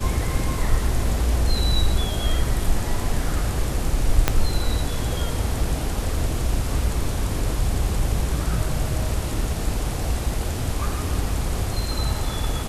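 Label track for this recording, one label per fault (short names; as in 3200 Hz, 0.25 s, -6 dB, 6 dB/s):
4.280000	4.280000	pop -2 dBFS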